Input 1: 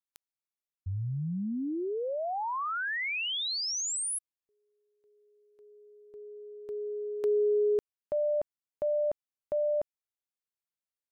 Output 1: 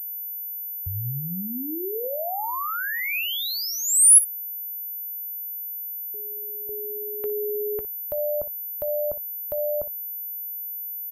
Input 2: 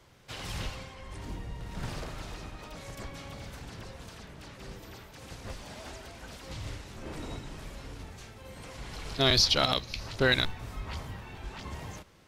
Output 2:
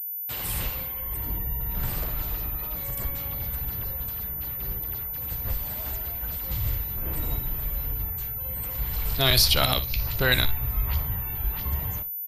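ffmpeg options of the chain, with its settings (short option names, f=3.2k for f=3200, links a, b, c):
-filter_complex "[0:a]afftfilt=real='re*gte(hypot(re,im),0.00282)':imag='im*gte(hypot(re,im),0.00282)':win_size=1024:overlap=0.75,agate=range=-21dB:threshold=-52dB:ratio=16:release=95:detection=rms,aeval=exprs='val(0)+0.00141*sin(2*PI*14000*n/s)':c=same,adynamicequalizer=threshold=0.00398:dfrequency=2500:dqfactor=6.4:tfrequency=2500:tqfactor=6.4:attack=5:release=100:ratio=0.417:range=1.5:mode=boostabove:tftype=bell,acrossover=split=420[a][b];[a]acompressor=threshold=-37dB:ratio=5:attack=39:release=48:knee=2.83:detection=peak[c];[c][b]amix=inputs=2:normalize=0,asubboost=boost=3.5:cutoff=130,aexciter=amount=10.7:drive=5.4:freq=8.7k,aecho=1:1:16|59:0.15|0.188,volume=3dB"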